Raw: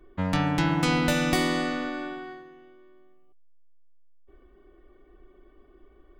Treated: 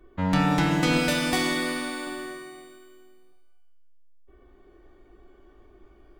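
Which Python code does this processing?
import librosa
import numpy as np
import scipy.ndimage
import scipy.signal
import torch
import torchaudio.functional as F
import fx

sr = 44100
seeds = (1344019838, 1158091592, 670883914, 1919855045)

y = fx.low_shelf(x, sr, hz=280.0, db=-8.0, at=(0.99, 2.07))
y = fx.rev_shimmer(y, sr, seeds[0], rt60_s=1.0, semitones=12, shimmer_db=-8, drr_db=3.0)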